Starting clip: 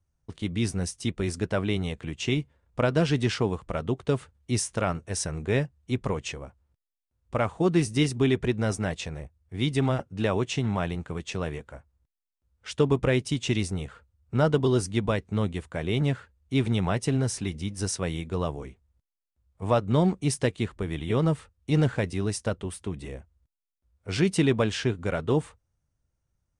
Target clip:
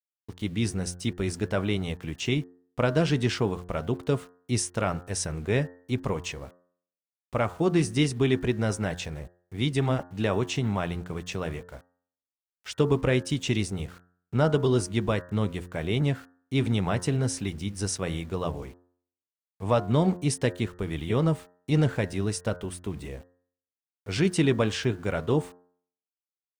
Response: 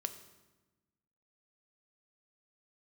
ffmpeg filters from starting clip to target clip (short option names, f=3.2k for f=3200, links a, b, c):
-af "aeval=exprs='val(0)*gte(abs(val(0)),0.00335)':c=same,bandreject=f=88.87:t=h:w=4,bandreject=f=177.74:t=h:w=4,bandreject=f=266.61:t=h:w=4,bandreject=f=355.48:t=h:w=4,bandreject=f=444.35:t=h:w=4,bandreject=f=533.22:t=h:w=4,bandreject=f=622.09:t=h:w=4,bandreject=f=710.96:t=h:w=4,bandreject=f=799.83:t=h:w=4,bandreject=f=888.7:t=h:w=4,bandreject=f=977.57:t=h:w=4,bandreject=f=1.06644k:t=h:w=4,bandreject=f=1.15531k:t=h:w=4,bandreject=f=1.24418k:t=h:w=4,bandreject=f=1.33305k:t=h:w=4,bandreject=f=1.42192k:t=h:w=4,bandreject=f=1.51079k:t=h:w=4,bandreject=f=1.59966k:t=h:w=4,bandreject=f=1.68853k:t=h:w=4,bandreject=f=1.7774k:t=h:w=4,bandreject=f=1.86627k:t=h:w=4"